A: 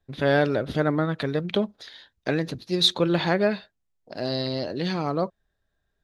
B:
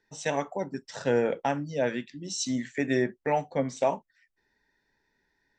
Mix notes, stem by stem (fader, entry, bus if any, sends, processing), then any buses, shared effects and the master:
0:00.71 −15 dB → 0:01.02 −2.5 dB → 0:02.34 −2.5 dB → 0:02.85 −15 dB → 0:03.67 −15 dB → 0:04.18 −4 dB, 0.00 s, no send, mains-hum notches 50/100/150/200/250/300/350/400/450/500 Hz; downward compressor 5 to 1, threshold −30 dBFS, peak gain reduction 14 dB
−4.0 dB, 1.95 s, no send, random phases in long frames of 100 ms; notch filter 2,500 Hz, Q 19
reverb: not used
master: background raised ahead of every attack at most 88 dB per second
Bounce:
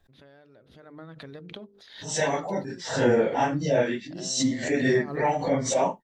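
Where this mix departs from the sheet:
stem A −15.0 dB → −22.0 dB
stem B −4.0 dB → +3.5 dB

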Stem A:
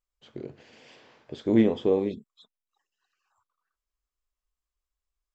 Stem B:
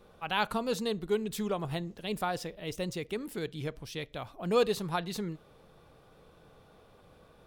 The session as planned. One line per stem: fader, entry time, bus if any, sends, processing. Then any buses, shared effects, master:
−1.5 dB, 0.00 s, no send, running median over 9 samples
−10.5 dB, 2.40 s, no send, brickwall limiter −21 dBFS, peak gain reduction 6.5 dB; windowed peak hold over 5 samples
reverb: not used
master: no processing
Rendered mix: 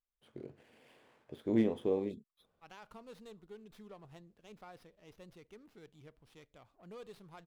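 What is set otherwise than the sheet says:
stem A −1.5 dB → −9.0 dB
stem B −10.5 dB → −20.0 dB

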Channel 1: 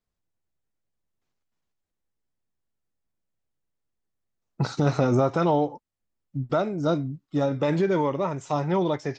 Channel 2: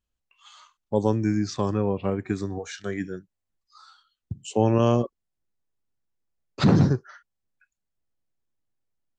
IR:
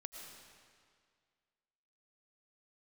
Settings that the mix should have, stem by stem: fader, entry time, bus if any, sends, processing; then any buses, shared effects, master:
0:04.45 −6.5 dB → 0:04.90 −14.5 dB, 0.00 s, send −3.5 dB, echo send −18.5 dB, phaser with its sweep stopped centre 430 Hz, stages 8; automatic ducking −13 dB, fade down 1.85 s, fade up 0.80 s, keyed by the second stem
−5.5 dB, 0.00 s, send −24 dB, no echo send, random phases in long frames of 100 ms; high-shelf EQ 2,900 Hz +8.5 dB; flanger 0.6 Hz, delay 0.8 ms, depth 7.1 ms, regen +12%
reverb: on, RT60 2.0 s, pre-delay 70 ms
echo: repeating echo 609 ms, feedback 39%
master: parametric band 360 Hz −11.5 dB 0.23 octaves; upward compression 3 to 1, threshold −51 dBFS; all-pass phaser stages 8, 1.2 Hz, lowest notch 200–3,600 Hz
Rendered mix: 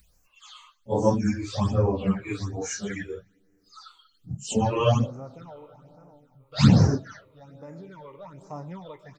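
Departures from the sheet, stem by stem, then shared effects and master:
stem 1: missing phaser with its sweep stopped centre 430 Hz, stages 8
stem 2 −5.5 dB → +5.5 dB

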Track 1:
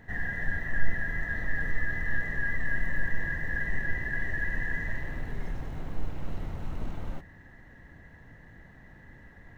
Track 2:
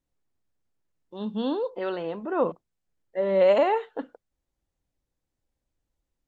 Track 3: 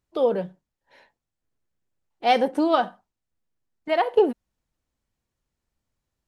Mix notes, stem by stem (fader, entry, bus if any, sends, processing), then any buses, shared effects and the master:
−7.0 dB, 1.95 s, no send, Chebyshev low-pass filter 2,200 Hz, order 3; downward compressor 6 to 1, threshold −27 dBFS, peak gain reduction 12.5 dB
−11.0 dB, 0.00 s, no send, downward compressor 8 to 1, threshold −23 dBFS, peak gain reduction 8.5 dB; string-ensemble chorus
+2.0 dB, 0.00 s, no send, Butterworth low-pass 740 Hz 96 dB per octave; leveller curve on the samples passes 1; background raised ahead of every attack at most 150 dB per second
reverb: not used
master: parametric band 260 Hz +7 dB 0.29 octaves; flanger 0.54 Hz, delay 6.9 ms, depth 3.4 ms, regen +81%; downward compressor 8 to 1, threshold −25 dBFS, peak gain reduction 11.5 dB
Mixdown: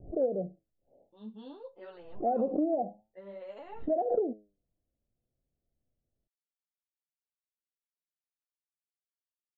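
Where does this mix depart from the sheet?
stem 1: muted
stem 3: missing leveller curve on the samples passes 1
master: missing parametric band 260 Hz +7 dB 0.29 octaves

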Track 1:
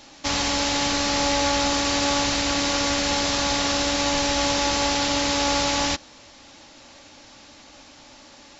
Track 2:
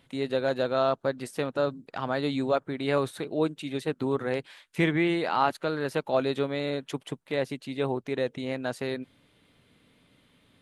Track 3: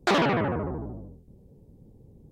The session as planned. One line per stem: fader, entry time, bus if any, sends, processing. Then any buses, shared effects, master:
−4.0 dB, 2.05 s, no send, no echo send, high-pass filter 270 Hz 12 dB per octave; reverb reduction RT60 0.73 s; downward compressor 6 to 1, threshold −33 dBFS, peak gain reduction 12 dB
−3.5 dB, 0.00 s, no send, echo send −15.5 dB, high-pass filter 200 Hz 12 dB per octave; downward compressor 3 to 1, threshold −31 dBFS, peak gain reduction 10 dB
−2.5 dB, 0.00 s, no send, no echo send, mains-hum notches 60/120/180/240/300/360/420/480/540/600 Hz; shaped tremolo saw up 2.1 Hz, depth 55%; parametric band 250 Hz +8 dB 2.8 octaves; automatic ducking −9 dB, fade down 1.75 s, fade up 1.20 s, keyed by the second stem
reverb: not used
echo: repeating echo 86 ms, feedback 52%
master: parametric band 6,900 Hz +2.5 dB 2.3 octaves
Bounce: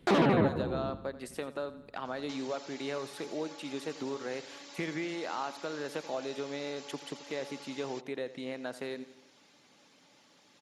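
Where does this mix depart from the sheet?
stem 1 −4.0 dB → −14.5 dB
master: missing parametric band 6,900 Hz +2.5 dB 2.3 octaves

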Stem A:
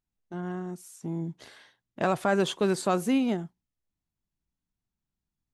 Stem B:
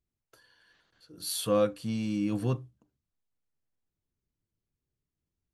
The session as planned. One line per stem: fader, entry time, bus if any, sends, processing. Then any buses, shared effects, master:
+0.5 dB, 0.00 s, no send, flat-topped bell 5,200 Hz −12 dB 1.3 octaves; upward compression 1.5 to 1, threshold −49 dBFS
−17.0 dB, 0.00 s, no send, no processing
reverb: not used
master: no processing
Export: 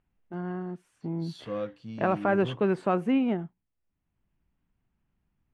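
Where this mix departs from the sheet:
stem B −17.0 dB → −7.5 dB
master: extra high-frequency loss of the air 160 metres

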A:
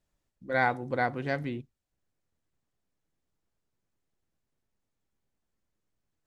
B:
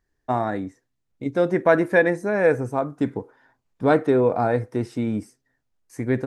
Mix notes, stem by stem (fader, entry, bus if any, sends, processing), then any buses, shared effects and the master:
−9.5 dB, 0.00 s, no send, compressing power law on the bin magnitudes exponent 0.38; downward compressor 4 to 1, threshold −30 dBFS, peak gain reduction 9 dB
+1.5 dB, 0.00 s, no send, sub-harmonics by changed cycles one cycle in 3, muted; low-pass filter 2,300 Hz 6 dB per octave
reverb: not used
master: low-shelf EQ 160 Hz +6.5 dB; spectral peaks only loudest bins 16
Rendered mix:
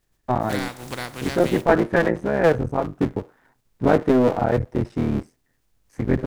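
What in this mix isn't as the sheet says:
stem A −9.5 dB → +2.0 dB
master: missing spectral peaks only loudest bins 16

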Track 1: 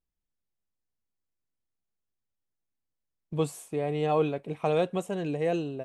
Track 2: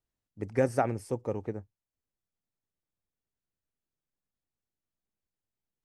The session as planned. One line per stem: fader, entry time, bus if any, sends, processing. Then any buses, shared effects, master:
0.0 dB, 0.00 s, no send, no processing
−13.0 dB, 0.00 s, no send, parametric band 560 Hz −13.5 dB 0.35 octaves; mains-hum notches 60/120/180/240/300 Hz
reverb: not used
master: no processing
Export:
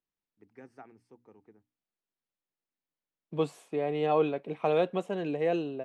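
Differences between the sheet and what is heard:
stem 2 −13.0 dB → −19.5 dB
master: extra three-way crossover with the lows and the highs turned down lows −16 dB, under 170 Hz, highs −16 dB, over 4,800 Hz

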